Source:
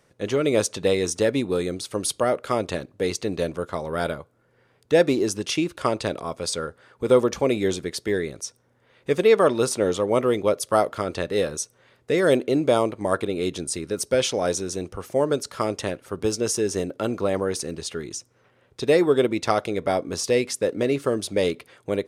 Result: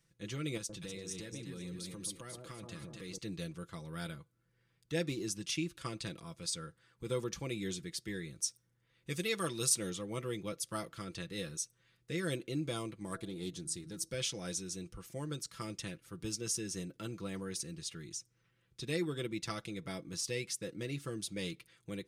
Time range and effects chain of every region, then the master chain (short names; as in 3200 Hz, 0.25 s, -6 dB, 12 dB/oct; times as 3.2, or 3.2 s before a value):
0.57–3.18 echo with dull and thin repeats by turns 0.123 s, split 990 Hz, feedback 59%, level -3 dB + compressor 2.5:1, threshold -28 dBFS
8.31–9.9 high shelf 4000 Hz +10 dB + mismatched tape noise reduction decoder only
13.03–14.09 bell 2500 Hz -8 dB 0.67 oct + de-hum 163.4 Hz, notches 4 + Doppler distortion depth 0.15 ms
whole clip: passive tone stack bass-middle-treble 6-0-2; comb 6 ms, depth 62%; gain +4.5 dB